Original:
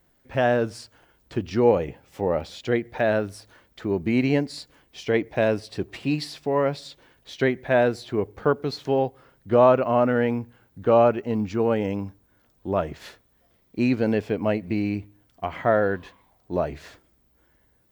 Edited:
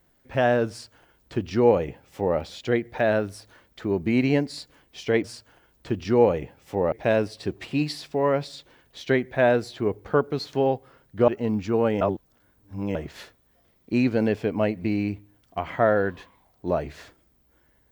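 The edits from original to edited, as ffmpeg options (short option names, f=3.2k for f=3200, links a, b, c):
-filter_complex "[0:a]asplit=6[a][b][c][d][e][f];[a]atrim=end=5.242[g];[b]atrim=start=0.698:end=2.382[h];[c]atrim=start=5.238:end=9.602[i];[d]atrim=start=11.138:end=11.872[j];[e]atrim=start=11.868:end=12.812,asetpts=PTS-STARTPTS,areverse[k];[f]atrim=start=12.808[l];[g][h]acrossfade=d=0.004:c1=hsin:c2=hsin[m];[m][i]acrossfade=d=0.004:c1=hsin:c2=hsin[n];[n][j]acrossfade=d=0.004:c1=hsin:c2=hsin[o];[o][k]acrossfade=d=0.004:c1=hsin:c2=hsin[p];[p][l]acrossfade=d=0.004:c1=hsin:c2=hsin"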